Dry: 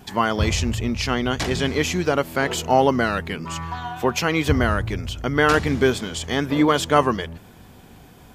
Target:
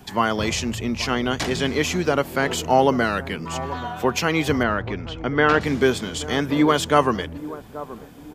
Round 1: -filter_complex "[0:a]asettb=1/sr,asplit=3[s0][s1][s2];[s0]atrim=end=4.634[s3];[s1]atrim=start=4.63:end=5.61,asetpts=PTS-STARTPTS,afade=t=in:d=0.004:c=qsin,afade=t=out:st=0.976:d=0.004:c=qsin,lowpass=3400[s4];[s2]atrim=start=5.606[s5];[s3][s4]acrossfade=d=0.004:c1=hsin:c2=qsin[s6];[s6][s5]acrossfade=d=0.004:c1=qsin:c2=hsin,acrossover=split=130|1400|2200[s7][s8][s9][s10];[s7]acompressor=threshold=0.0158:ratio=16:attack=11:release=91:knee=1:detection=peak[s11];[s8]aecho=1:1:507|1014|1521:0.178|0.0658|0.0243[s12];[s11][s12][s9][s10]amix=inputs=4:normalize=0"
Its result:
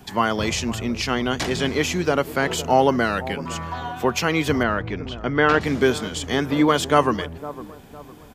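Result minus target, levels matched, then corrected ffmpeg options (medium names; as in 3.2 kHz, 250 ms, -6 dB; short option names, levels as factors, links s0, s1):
echo 323 ms early
-filter_complex "[0:a]asettb=1/sr,asplit=3[s0][s1][s2];[s0]atrim=end=4.634[s3];[s1]atrim=start=4.63:end=5.61,asetpts=PTS-STARTPTS,afade=t=in:d=0.004:c=qsin,afade=t=out:st=0.976:d=0.004:c=qsin,lowpass=3400[s4];[s2]atrim=start=5.606[s5];[s3][s4]acrossfade=d=0.004:c1=hsin:c2=qsin[s6];[s6][s5]acrossfade=d=0.004:c1=qsin:c2=hsin,acrossover=split=130|1400|2200[s7][s8][s9][s10];[s7]acompressor=threshold=0.0158:ratio=16:attack=11:release=91:knee=1:detection=peak[s11];[s8]aecho=1:1:830|1660|2490:0.178|0.0658|0.0243[s12];[s11][s12][s9][s10]amix=inputs=4:normalize=0"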